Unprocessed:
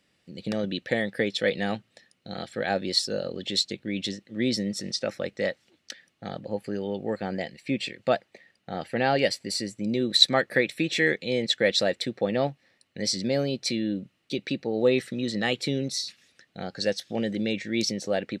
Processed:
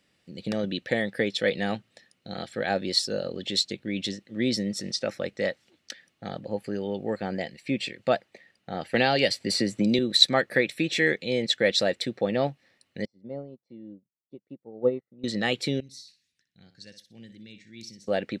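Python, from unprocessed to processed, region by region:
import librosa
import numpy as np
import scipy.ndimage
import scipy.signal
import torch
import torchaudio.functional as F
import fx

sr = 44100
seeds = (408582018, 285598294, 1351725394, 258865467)

y = fx.chain(x, sr, fx.peak_eq(hz=3700.0, db=4.0, octaves=0.77),
    fx.band_squash(depth_pct=100), at=(8.94, 9.99))
y = fx.chain(y, sr, fx.savgol(points=65),
    fx.upward_expand(threshold_db=-40.0, expansion=2.5), at=(13.05, 15.24))
y = fx.chain(y, sr, fx.tone_stack(knobs='6-0-2'),
    fx.notch(hz=1300.0, q=11.0),
    fx.room_flutter(wall_m=10.5, rt60_s=0.32), at=(15.8, 18.08))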